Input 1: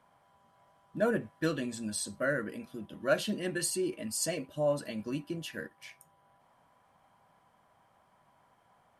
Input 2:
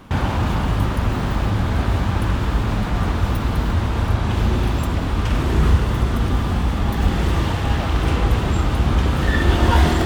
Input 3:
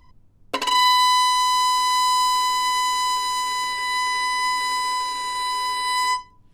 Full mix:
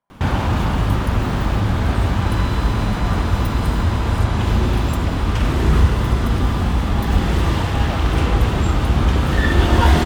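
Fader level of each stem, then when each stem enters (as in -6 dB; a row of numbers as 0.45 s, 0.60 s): -15.5 dB, +1.5 dB, -20.0 dB; 0.00 s, 0.10 s, 1.55 s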